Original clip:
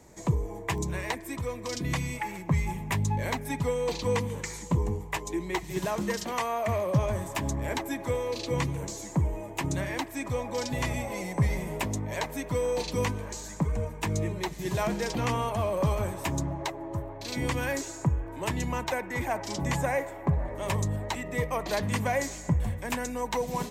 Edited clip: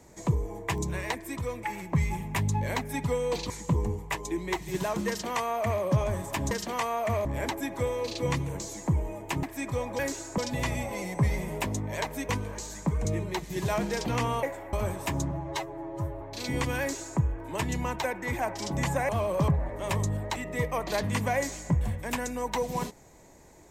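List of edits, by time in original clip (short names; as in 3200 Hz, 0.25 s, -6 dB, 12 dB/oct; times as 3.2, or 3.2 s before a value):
1.63–2.19 cut
4.06–4.52 cut
6.1–6.84 copy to 7.53
9.71–10.01 cut
12.48–13.03 cut
13.79–14.14 cut
15.52–15.91 swap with 19.97–20.27
16.49–17.09 stretch 1.5×
17.68–18.07 copy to 10.57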